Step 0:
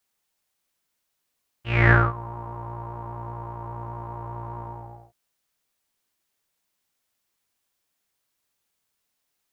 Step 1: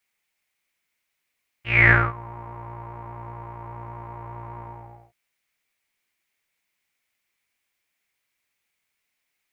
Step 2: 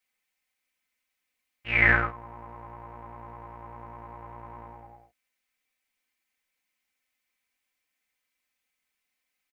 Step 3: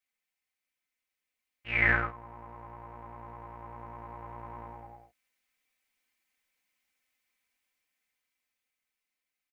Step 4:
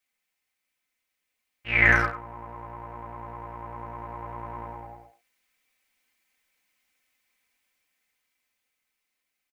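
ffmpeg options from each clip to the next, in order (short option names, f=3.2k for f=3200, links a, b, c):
-af "equalizer=f=2.2k:w=2.1:g=13.5,volume=-3dB"
-af "aecho=1:1:3.9:0.59,volume=-5dB"
-af "dynaudnorm=f=440:g=9:m=8dB,volume=-7dB"
-filter_complex "[0:a]asplit=2[a][b];[b]adelay=100,highpass=300,lowpass=3.4k,asoftclip=type=hard:threshold=-21dB,volume=-11dB[c];[a][c]amix=inputs=2:normalize=0,volume=6dB"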